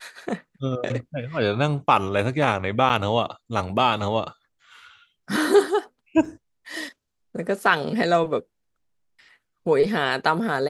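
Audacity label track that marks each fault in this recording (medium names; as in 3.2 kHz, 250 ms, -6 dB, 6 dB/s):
2.890000	2.900000	dropout 7.7 ms
6.250000	6.250000	dropout 2.9 ms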